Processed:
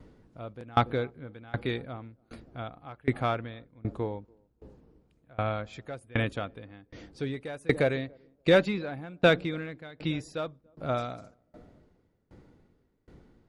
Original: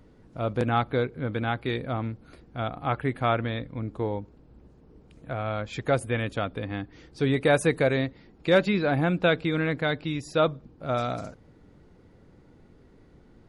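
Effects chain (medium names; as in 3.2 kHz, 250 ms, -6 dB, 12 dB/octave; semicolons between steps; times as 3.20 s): band-passed feedback delay 286 ms, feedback 49%, band-pass 320 Hz, level -18.5 dB; in parallel at -6 dB: one-sided clip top -20.5 dBFS, bottom -16 dBFS; on the sum: sawtooth tremolo in dB decaying 1.3 Hz, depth 27 dB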